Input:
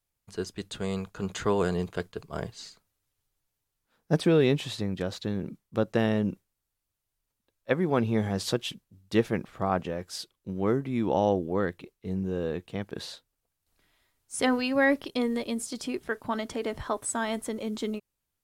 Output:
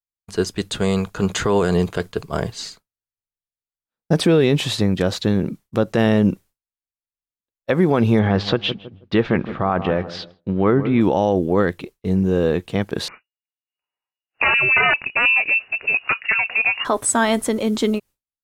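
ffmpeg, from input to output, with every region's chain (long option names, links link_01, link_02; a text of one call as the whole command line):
ffmpeg -i in.wav -filter_complex "[0:a]asettb=1/sr,asplit=3[link_01][link_02][link_03];[link_01]atrim=end=8.194[link_04];[link_02]atrim=start=8.19:end=11.01,asetpts=PTS-STARTPTS,afade=type=in:duration=0.004:curve=qsin,afade=type=out:start_time=2.816:duration=0.004:curve=qsin,lowpass=frequency=3800:width=0.5412,lowpass=frequency=3800:width=1.3066,equalizer=frequency=1300:width=1.2:gain=3.5,asplit=2[link_05][link_06];[link_06]adelay=160,lowpass=frequency=1200:poles=1,volume=-15dB,asplit=2[link_07][link_08];[link_08]adelay=160,lowpass=frequency=1200:poles=1,volume=0.39,asplit=2[link_09][link_10];[link_10]adelay=160,lowpass=frequency=1200:poles=1,volume=0.39,asplit=2[link_11][link_12];[link_12]adelay=160,lowpass=frequency=1200:poles=1,volume=0.39[link_13];[link_05][link_07][link_09][link_11][link_13]amix=inputs=5:normalize=0,atrim=end_sample=124362[link_14];[link_03]atrim=start=11.006[link_15];[link_04][link_14]acrossfade=duration=0.004:curve1=hsin:curve2=qsin[link_16];[link_16][link_15]acrossfade=duration=0.004:curve1=qsin:curve2=hsin,asettb=1/sr,asplit=3[link_17][link_18][link_19];[link_17]atrim=end=13.084[link_20];[link_18]atrim=start=13.08:end=16.85,asetpts=PTS-STARTPTS,afade=type=in:duration=0.004:curve=qsin,afade=type=out:start_time=3.766:duration=0.004:curve=qsin,aeval=exprs='(mod(9.44*val(0)+1,2)-1)/9.44':channel_layout=same,lowpass=frequency=2500:width_type=q:width=0.5098,lowpass=frequency=2500:width_type=q:width=0.6013,lowpass=frequency=2500:width_type=q:width=0.9,lowpass=frequency=2500:width_type=q:width=2.563,afreqshift=-2900[link_21];[link_19]atrim=start=16.846[link_22];[link_20][link_21]acrossfade=duration=0.004:curve1=hsin:curve2=qsin[link_23];[link_23][link_22]acrossfade=duration=0.004:curve1=qsin:curve2=hsin,agate=range=-33dB:threshold=-48dB:ratio=3:detection=peak,alimiter=level_in=18.5dB:limit=-1dB:release=50:level=0:latency=1,volume=-6dB" out.wav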